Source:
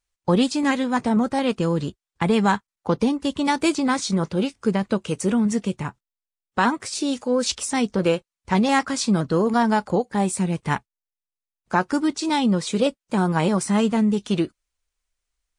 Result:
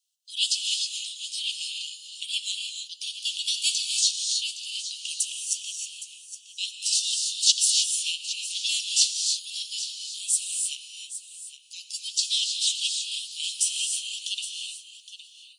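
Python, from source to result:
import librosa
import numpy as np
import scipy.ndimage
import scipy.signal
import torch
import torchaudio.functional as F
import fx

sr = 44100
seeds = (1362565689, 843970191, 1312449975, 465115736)

y = scipy.signal.sosfilt(scipy.signal.butter(16, 2800.0, 'highpass', fs=sr, output='sos'), x)
y = y + 10.0 ** (-13.0 / 20.0) * np.pad(y, (int(815 * sr / 1000.0), 0))[:len(y)]
y = fx.rev_gated(y, sr, seeds[0], gate_ms=340, shape='rising', drr_db=2.5)
y = y * librosa.db_to_amplitude(6.5)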